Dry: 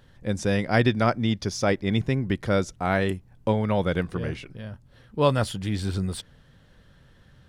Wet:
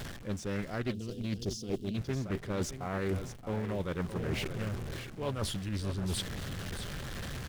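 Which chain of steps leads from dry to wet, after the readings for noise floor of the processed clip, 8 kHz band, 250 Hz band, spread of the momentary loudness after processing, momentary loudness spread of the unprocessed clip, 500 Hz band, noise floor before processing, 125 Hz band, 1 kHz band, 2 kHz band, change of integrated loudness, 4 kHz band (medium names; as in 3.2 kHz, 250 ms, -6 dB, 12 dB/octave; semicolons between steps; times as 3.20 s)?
-46 dBFS, -3.5 dB, -9.5 dB, 5 LU, 11 LU, -11.0 dB, -56 dBFS, -8.5 dB, -13.5 dB, -11.5 dB, -11.0 dB, -6.0 dB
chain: jump at every zero crossing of -35 dBFS; reverse; compression 16:1, threshold -32 dBFS, peak gain reduction 18.5 dB; reverse; band-stop 920 Hz, Q 15; delay 624 ms -10 dB; dynamic bell 390 Hz, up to +5 dB, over -53 dBFS, Q 7.2; time-frequency box 0.93–1.97 s, 510–2700 Hz -23 dB; in parallel at -10 dB: Schmitt trigger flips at -30 dBFS; on the sum: loudspeaker Doppler distortion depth 0.45 ms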